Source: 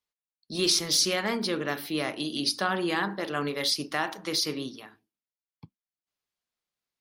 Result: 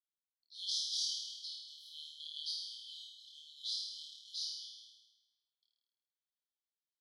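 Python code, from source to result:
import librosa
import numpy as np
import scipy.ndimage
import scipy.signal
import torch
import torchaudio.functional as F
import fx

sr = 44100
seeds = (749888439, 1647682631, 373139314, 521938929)

p1 = fx.sample_hold(x, sr, seeds[0], rate_hz=4800.0, jitter_pct=0)
p2 = x + (p1 * librosa.db_to_amplitude(-11.5))
p3 = fx.brickwall_highpass(p2, sr, low_hz=3000.0)
p4 = fx.spacing_loss(p3, sr, db_at_10k=25)
p5 = fx.room_flutter(p4, sr, wall_m=4.5, rt60_s=1.1)
y = p5 * librosa.db_to_amplitude(-4.0)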